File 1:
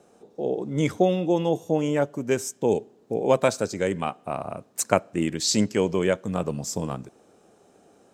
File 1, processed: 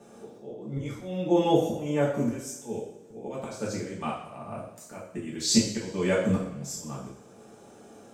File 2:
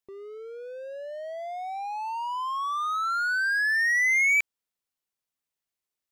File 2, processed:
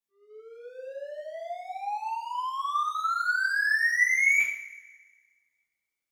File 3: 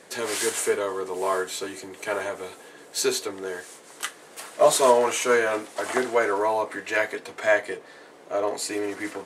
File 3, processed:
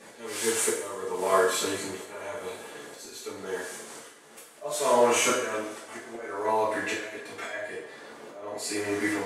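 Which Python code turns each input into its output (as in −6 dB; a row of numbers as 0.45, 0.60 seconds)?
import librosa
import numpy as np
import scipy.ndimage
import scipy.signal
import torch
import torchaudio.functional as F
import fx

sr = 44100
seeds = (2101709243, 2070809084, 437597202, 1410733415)

y = fx.auto_swell(x, sr, attack_ms=702.0)
y = fx.rev_double_slope(y, sr, seeds[0], early_s=0.6, late_s=1.7, knee_db=-17, drr_db=-7.0)
y = y * 10.0 ** (-30 / 20.0) / np.sqrt(np.mean(np.square(y)))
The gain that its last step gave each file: −1.5, −8.5, −3.5 decibels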